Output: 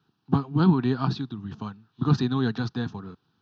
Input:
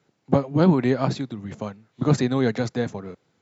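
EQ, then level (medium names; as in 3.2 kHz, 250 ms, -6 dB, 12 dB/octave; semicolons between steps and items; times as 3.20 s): static phaser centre 2.1 kHz, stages 6; 0.0 dB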